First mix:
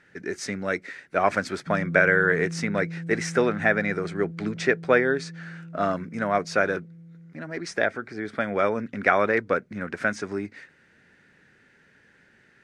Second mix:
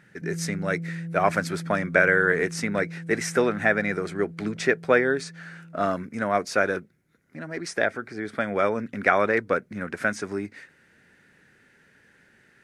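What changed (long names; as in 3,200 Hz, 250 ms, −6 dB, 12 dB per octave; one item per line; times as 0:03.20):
background: entry −1.45 s
master: remove low-pass filter 7,000 Hz 12 dB per octave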